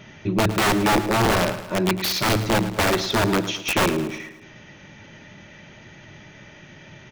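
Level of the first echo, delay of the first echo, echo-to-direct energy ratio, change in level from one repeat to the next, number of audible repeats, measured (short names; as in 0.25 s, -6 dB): -13.0 dB, 0.108 s, -11.5 dB, -5.5 dB, 4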